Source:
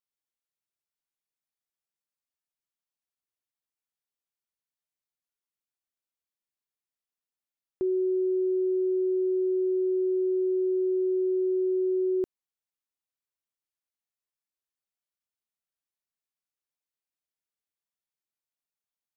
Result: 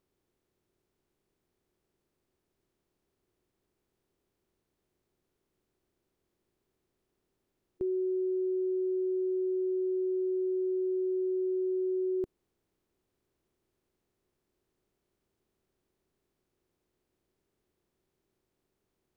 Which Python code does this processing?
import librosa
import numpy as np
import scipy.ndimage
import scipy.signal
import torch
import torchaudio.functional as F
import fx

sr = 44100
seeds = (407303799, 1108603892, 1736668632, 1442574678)

y = fx.bin_compress(x, sr, power=0.6)
y = fx.low_shelf(y, sr, hz=220.0, db=8.5)
y = y * librosa.db_to_amplitude(-7.0)